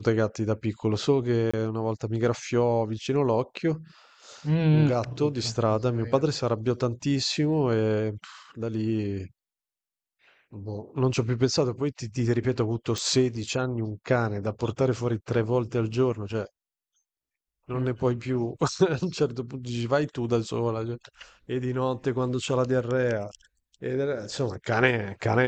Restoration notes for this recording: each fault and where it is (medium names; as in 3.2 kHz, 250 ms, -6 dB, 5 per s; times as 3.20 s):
1.51–1.53 s: dropout 25 ms
12.98 s: pop